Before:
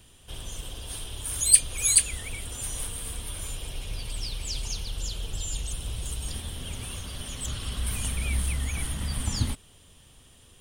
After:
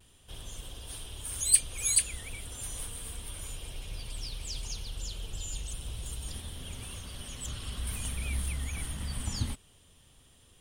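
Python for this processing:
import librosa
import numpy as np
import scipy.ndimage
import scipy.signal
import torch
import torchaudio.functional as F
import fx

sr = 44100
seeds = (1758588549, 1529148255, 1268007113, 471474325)

y = fx.vibrato(x, sr, rate_hz=0.51, depth_cents=24.0)
y = F.gain(torch.from_numpy(y), -5.5).numpy()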